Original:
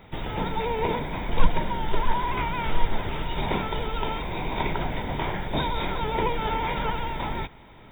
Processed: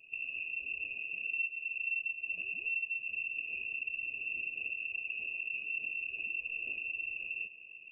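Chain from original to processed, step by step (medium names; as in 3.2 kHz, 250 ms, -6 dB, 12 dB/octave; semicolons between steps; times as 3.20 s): inverse Chebyshev band-stop 530–1200 Hz, stop band 70 dB; compression 6:1, threshold -32 dBFS, peak gain reduction 20.5 dB; on a send at -13 dB: reverberation RT60 4.6 s, pre-delay 64 ms; on the sum: frequency inversion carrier 2.7 kHz; trim -5.5 dB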